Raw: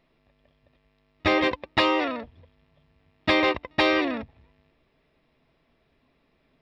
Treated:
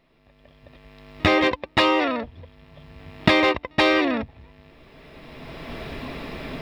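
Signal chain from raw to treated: recorder AGC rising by 17 dB/s; in parallel at -6.5 dB: hard clipper -18 dBFS, distortion -11 dB

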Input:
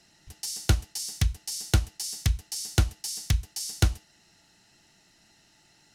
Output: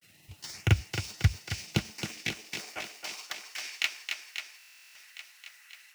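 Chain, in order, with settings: median filter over 5 samples; peaking EQ 2.4 kHz +13.5 dB 0.7 oct; in parallel at -5.5 dB: word length cut 8-bit, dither triangular; on the sum: LFO notch saw up 1.4 Hz 810–4600 Hz; granulator 100 ms, grains 20 per s, spray 34 ms, pitch spread up and down by 0 st; high-pass sweep 96 Hz -> 1.6 kHz, 1.32–3.58 s; on a send: thinning echo 270 ms, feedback 73%, high-pass 220 Hz, level -6 dB; on the sum: buffer glitch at 4.58 s, samples 1024, times 15; trim -6 dB

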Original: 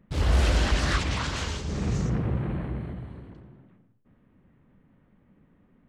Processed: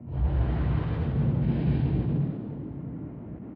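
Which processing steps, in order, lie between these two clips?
high-pass 80 Hz 12 dB/octave; bass shelf 240 Hz +5 dB; compression 8:1, threshold -43 dBFS, peak gain reduction 24.5 dB; peak limiter -40.5 dBFS, peak gain reduction 7 dB; time stretch by phase-locked vocoder 0.67×; painted sound noise, 1.54–1.99 s, 1.3–4.7 kHz -58 dBFS; tape speed +11%; distance through air 430 m; frequency-shifting echo 187 ms, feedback 47%, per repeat +51 Hz, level -6 dB; reverberation RT60 1.1 s, pre-delay 3 ms, DRR -3.5 dB; attacks held to a fixed rise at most 100 dB/s

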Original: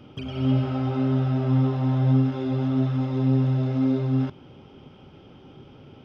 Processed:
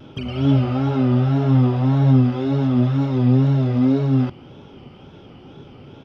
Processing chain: wow and flutter 100 cents; resampled via 32 kHz; trim +5.5 dB

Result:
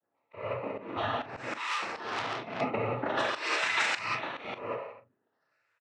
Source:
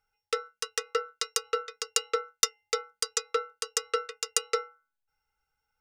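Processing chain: four frequency bands reordered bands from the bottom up 2143; reverse bouncing-ball echo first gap 30 ms, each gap 1.25×, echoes 5; decimation with a swept rate 21×, swing 100% 0.48 Hz; elliptic low-pass 5.7 kHz; spectral gate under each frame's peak -15 dB strong; bass shelf 210 Hz -10 dB; noise-vocoded speech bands 12; 3.12–4.45 s: tilt shelf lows -9 dB, about 1.1 kHz; gated-style reverb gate 210 ms flat, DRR -4 dB; slow attack 244 ms; doubling 40 ms -12 dB; 1.63–2.61 s: transformer saturation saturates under 3.2 kHz

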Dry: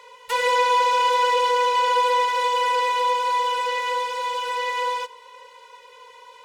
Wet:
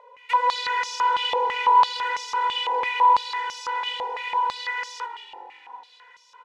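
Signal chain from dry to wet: frequency-shifting echo 183 ms, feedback 55%, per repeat -45 Hz, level -10.5 dB; step-sequenced band-pass 6 Hz 700–5600 Hz; trim +6.5 dB

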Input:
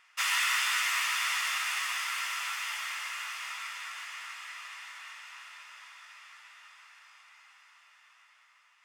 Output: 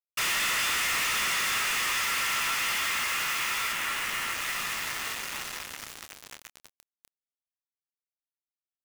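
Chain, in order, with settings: 3.72–4.41 s: Chebyshev band-pass 790–3200 Hz, order 3; in parallel at -1.5 dB: compression, threshold -41 dBFS, peak gain reduction 15 dB; on the sum: companded quantiser 2-bit; doubling 28 ms -12 dB; trim -2 dB

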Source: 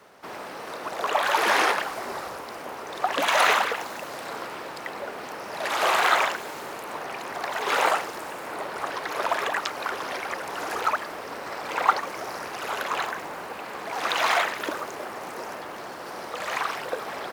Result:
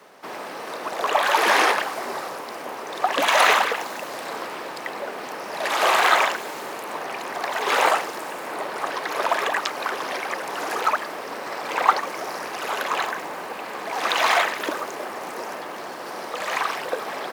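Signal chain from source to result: high-pass 170 Hz 12 dB/octave; band-stop 1.4 kHz, Q 22; trim +3.5 dB

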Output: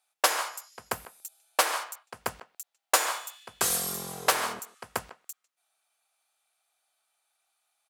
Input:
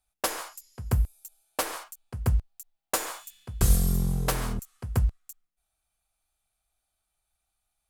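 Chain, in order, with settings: high-pass 640 Hz 12 dB/octave; treble shelf 9.5 kHz -7.5 dB; speakerphone echo 150 ms, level -16 dB; trim +7.5 dB

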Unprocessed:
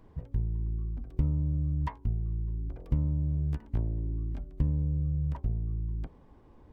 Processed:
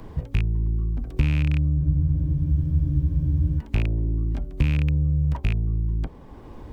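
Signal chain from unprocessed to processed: rattle on loud lows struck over -27 dBFS, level -27 dBFS; spectral freeze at 1.82 s, 1.77 s; three bands compressed up and down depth 40%; trim +7.5 dB

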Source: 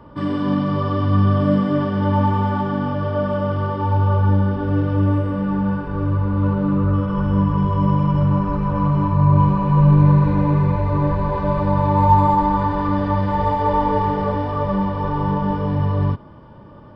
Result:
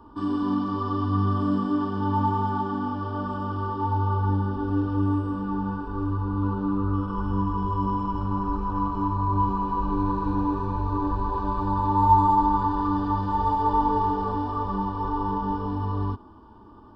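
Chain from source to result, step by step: static phaser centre 560 Hz, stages 6; trim -2.5 dB

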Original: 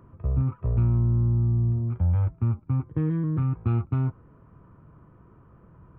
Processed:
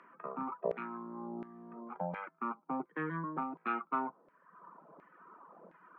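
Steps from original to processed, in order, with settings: steep high-pass 160 Hz 96 dB/octave; reverb removal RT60 1.2 s; LFO band-pass saw down 1.4 Hz 600–2100 Hz; trim +13 dB

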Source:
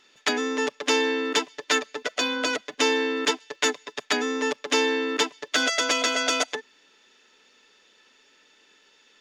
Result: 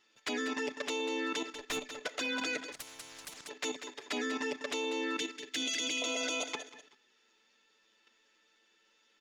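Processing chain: on a send at -10.5 dB: bass shelf 180 Hz -8 dB + reverberation RT60 0.50 s, pre-delay 3 ms; on the sum: touch-sensitive flanger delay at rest 9.6 ms, full sweep at -20.5 dBFS; 5.18–6.02 s: high-order bell 830 Hz -12.5 dB; feedback delay 191 ms, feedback 19%, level -12.5 dB; 1.52–2.02 s: valve stage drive 25 dB, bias 0.45; in parallel at 0 dB: peak limiter -20.5 dBFS, peak gain reduction 9.5 dB; on the sum: level held to a coarse grid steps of 9 dB; 2.72–3.49 s: spectrum-flattening compressor 10:1; trim -7.5 dB

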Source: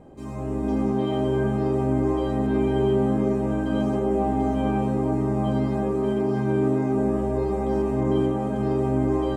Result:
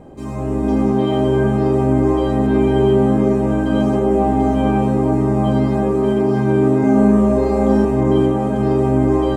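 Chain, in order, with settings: 6.80–7.85 s: flutter echo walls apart 5.8 m, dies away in 0.53 s; trim +7.5 dB

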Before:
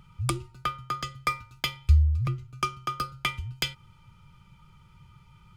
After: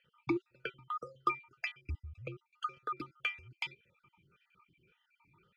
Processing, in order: random holes in the spectrogram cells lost 49%; talking filter e-u 1.8 Hz; trim +8 dB

